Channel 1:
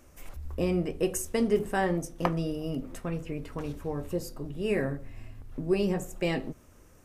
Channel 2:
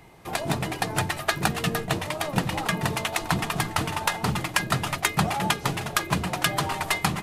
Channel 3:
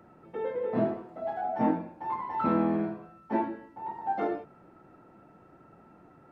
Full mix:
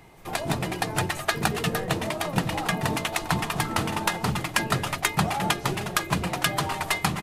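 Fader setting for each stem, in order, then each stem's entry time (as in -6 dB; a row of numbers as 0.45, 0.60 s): -11.5, -0.5, -7.5 dB; 0.00, 0.00, 1.25 s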